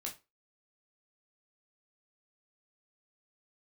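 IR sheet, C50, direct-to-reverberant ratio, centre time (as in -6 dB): 12.0 dB, -1.0 dB, 16 ms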